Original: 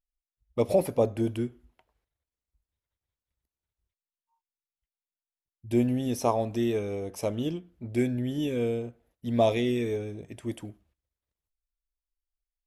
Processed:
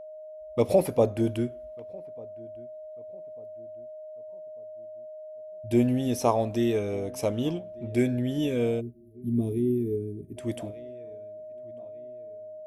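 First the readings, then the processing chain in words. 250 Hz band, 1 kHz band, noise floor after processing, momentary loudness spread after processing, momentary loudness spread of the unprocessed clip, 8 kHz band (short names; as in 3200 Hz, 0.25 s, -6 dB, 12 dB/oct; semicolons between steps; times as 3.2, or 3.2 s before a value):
+2.0 dB, 0.0 dB, -43 dBFS, 18 LU, 13 LU, +2.0 dB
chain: whine 620 Hz -42 dBFS; darkening echo 1.195 s, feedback 43%, low-pass 1300 Hz, level -23 dB; spectral gain 8.81–10.37, 450–8800 Hz -27 dB; gain +2 dB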